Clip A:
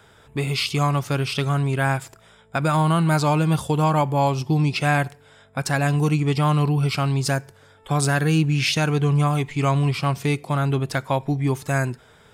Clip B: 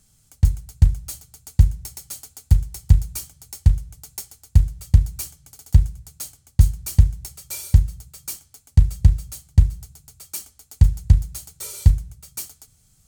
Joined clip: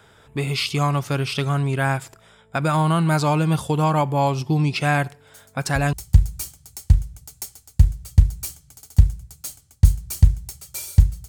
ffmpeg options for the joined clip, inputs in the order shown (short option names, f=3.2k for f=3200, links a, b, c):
-filter_complex "[1:a]asplit=2[a][b];[0:a]apad=whole_dur=11.28,atrim=end=11.28,atrim=end=5.932[c];[b]atrim=start=2.688:end=8.04[d];[a]atrim=start=2.03:end=2.69,asetpts=PTS-STARTPTS,volume=-15dB,afade=t=in:d=0.004:c=hsin,afade=t=out:st=0.656:d=0.004:c=hsin,adelay=5270[e];[c][d]acrossfade=d=0.004:c1=hsin:c2=hsin[f];[f][e]amix=inputs=2:normalize=0"